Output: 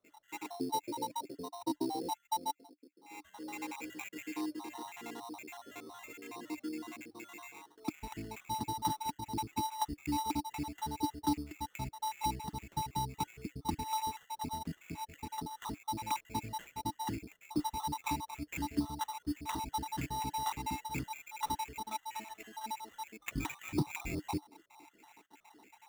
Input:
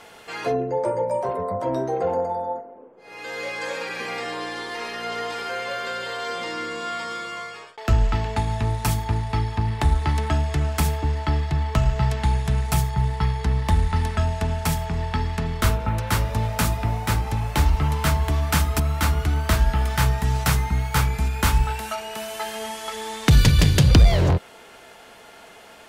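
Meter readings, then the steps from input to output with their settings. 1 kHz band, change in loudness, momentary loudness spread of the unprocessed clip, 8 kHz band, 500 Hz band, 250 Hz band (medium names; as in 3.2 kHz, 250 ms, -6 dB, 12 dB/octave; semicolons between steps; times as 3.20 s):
-9.0 dB, -16.0 dB, 9 LU, -13.0 dB, -20.5 dB, -10.0 dB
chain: random holes in the spectrogram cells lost 61%; vowel filter u; sample-rate reducer 4.8 kHz, jitter 0%; trim +4 dB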